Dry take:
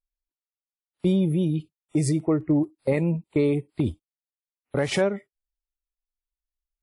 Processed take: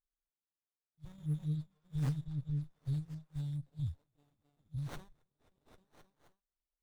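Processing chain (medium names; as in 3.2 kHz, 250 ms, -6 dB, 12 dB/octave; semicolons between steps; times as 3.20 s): single-diode clipper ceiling -25 dBFS; FFT band-reject 160–3400 Hz; 1.18–3.31 s: waveshaping leveller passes 1; repeats whose band climbs or falls 264 ms, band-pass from 1.2 kHz, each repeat 0.7 oct, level -6 dB; sliding maximum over 17 samples; trim -6 dB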